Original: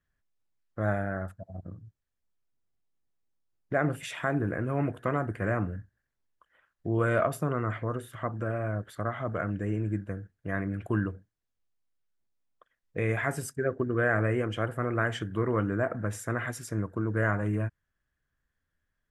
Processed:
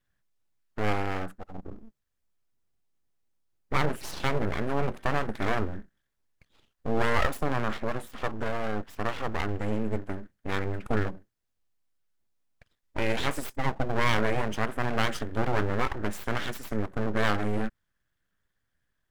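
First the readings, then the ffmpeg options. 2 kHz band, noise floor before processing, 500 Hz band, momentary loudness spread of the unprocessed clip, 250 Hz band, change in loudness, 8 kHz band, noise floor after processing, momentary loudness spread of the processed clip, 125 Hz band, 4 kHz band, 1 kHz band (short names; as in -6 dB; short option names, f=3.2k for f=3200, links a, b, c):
+1.0 dB, -83 dBFS, -0.5 dB, 10 LU, -1.0 dB, 0.0 dB, +0.5 dB, -79 dBFS, 9 LU, -3.0 dB, +9.5 dB, +4.0 dB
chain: -af "aeval=exprs='abs(val(0))':c=same,volume=3.5dB"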